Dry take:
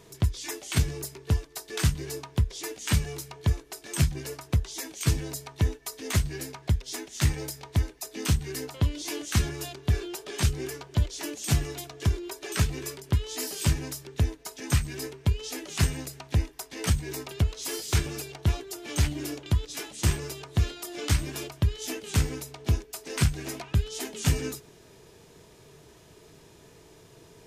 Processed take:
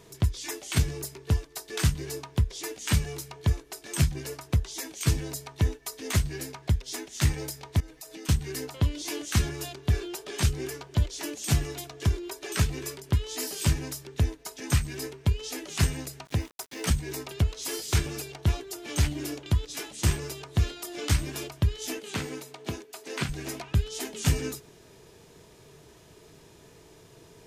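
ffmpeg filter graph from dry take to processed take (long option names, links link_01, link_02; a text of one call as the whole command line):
ffmpeg -i in.wav -filter_complex "[0:a]asettb=1/sr,asplit=3[link_01][link_02][link_03];[link_01]atrim=end=7.804[link_04];[link_02]atrim=start=7.8:end=8.29,asetpts=PTS-STARTPTS,afade=type=in:duration=0.004:curve=qsin,afade=type=out:start_time=0.486:duration=0.004:curve=qsin,aecho=1:1:6.3:1,atrim=end_sample=21609,acompressor=threshold=-39dB:ratio=10:attack=3.2:release=140:knee=1:detection=peak[link_05];[link_03]atrim=start=8.286[link_06];[link_04][link_05]acrossfade=duration=0.004:curve1=hsin:curve2=qsin[link_07];[link_07][link_06]acrossfade=duration=0.004:curve1=qsin:curve2=hsin,asettb=1/sr,asplit=3[link_08][link_09][link_10];[link_08]atrim=end=16.254[link_11];[link_09]atrim=start=16.25:end=16.91,asetpts=PTS-STARTPTS,afade=type=in:duration=0.004:curve=qsin,afade=type=out:start_time=0.656:duration=0.004:curve=qsin,highpass=95,aeval=exprs='val(0)*gte(abs(val(0)),0.00501)':channel_layout=same[link_12];[link_10]atrim=start=16.906[link_13];[link_11][link_12]acrossfade=duration=0.004:curve1=hsin:curve2=qsin[link_14];[link_14][link_13]acrossfade=duration=0.004:curve1=qsin:curve2=hsin,asettb=1/sr,asplit=3[link_15][link_16][link_17];[link_15]atrim=end=21.994[link_18];[link_16]atrim=start=21.99:end=23.29,asetpts=PTS-STARTPTS,afade=type=in:duration=0.004:curve=qsin,afade=type=out:start_time=1.296:duration=0.004:curve=qsin,acrossover=split=5000[link_19][link_20];[link_20]acompressor=threshold=-43dB:ratio=4:attack=1:release=60[link_21];[link_19][link_21]amix=inputs=2:normalize=0,highpass=210,equalizer=frequency=5400:width=6.3:gain=-3.5[link_22];[link_17]atrim=start=23.286[link_23];[link_18][link_22]acrossfade=duration=0.004:curve1=hsin:curve2=qsin[link_24];[link_24][link_23]acrossfade=duration=0.004:curve1=qsin:curve2=hsin" out.wav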